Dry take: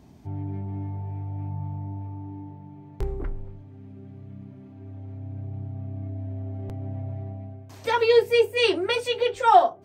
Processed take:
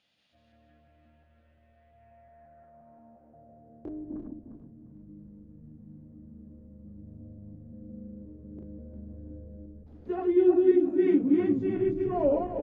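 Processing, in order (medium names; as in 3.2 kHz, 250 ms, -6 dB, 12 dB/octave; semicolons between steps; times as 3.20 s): backward echo that repeats 137 ms, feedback 47%, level -2.5 dB; tape speed -22%; band-pass sweep 3.1 kHz -> 280 Hz, 1.86–4.24 s; frequency-shifting echo 373 ms, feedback 62%, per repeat -83 Hz, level -15 dB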